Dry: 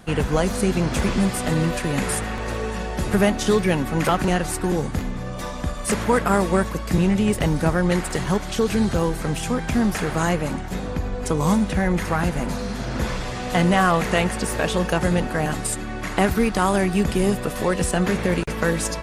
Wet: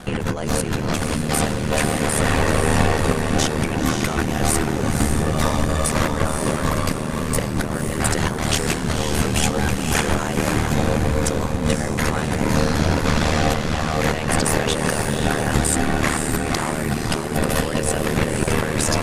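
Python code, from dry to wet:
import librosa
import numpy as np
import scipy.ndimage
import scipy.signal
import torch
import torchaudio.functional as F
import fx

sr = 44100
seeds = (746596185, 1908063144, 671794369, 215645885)

y = fx.over_compress(x, sr, threshold_db=-27.0, ratio=-1.0)
y = fx.echo_diffused(y, sr, ms=532, feedback_pct=47, wet_db=-4.5)
y = y * np.sin(2.0 * np.pi * 38.0 * np.arange(len(y)) / sr)
y = y * 10.0 ** (7.5 / 20.0)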